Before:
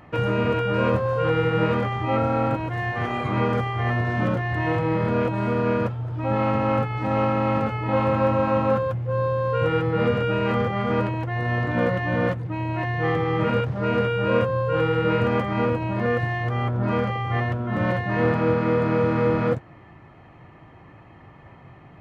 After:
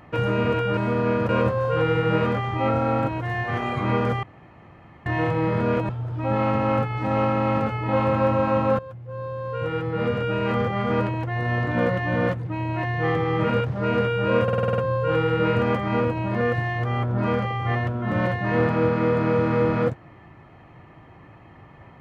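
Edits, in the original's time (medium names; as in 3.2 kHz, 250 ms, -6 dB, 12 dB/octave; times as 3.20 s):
3.71–4.54 s: room tone
5.37–5.89 s: move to 0.77 s
8.79–10.73 s: fade in, from -15 dB
14.43 s: stutter 0.05 s, 8 plays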